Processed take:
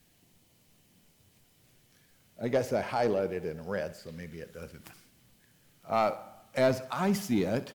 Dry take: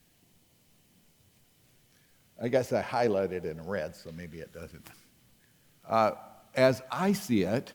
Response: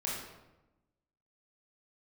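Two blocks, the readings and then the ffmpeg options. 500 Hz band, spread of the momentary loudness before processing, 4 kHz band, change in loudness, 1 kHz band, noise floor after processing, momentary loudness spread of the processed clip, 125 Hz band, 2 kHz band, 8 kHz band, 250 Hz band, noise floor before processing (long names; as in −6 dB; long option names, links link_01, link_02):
−1.0 dB, 18 LU, −1.5 dB, −1.5 dB, −1.5 dB, −66 dBFS, 16 LU, −1.0 dB, −2.0 dB, −0.5 dB, −1.0 dB, −66 dBFS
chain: -af "asoftclip=type=tanh:threshold=-17dB,aecho=1:1:65|130|195|260:0.15|0.0643|0.0277|0.0119"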